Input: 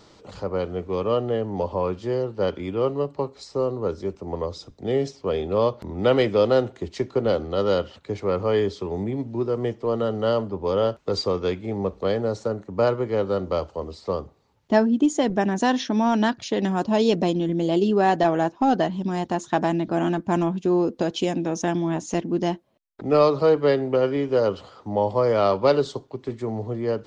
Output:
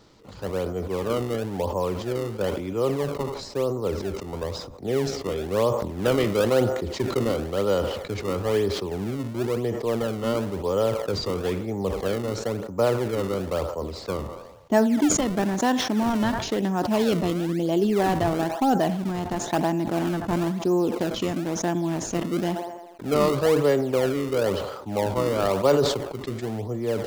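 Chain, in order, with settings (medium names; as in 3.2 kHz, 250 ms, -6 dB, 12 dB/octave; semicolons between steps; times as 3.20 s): feedback echo behind a band-pass 81 ms, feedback 57%, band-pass 940 Hz, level -17 dB; in parallel at -6 dB: decimation with a swept rate 31×, swing 160% 1 Hz; on the sum: decay stretcher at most 53 dB/s; trim -5 dB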